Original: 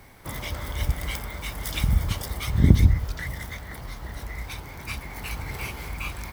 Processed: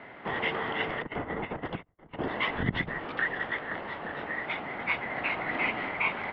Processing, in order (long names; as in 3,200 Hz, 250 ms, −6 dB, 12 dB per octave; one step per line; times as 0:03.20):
0:01.02–0:02.28: spectral tilt −4.5 dB per octave
compressor whose output falls as the input rises −17 dBFS, ratio −0.5
single-sideband voice off tune −140 Hz 320–3,100 Hz
level +1.5 dB